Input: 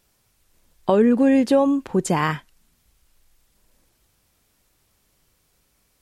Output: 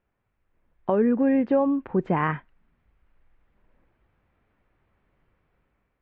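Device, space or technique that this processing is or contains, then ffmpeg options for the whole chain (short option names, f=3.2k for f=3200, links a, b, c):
action camera in a waterproof case: -af "lowpass=f=2.2k:w=0.5412,lowpass=f=2.2k:w=1.3066,dynaudnorm=f=270:g=5:m=7.5dB,volume=-8dB" -ar 24000 -c:a aac -b:a 64k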